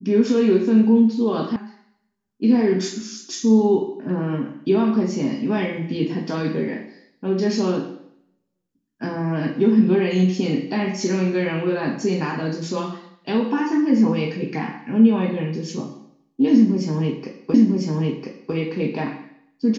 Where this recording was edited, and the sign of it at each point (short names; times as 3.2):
1.56 sound cut off
17.54 repeat of the last 1 s